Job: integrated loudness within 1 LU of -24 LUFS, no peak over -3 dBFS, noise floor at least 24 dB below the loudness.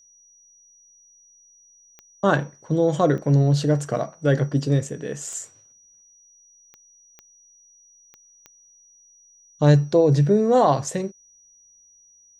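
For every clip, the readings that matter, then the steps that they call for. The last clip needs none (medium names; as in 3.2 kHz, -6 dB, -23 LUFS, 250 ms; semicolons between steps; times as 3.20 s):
clicks found 7; steady tone 5.8 kHz; tone level -52 dBFS; loudness -21.0 LUFS; peak level -3.5 dBFS; loudness target -24.0 LUFS
-> de-click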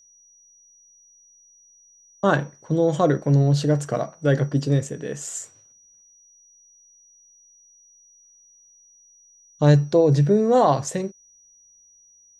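clicks found 0; steady tone 5.8 kHz; tone level -52 dBFS
-> band-stop 5.8 kHz, Q 30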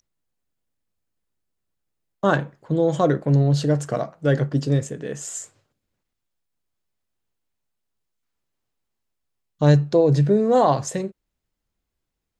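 steady tone not found; loudness -20.5 LUFS; peak level -3.5 dBFS; loudness target -24.0 LUFS
-> trim -3.5 dB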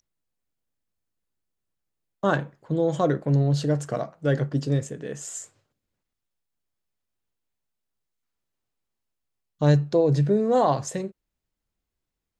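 loudness -24.0 LUFS; peak level -7.0 dBFS; noise floor -84 dBFS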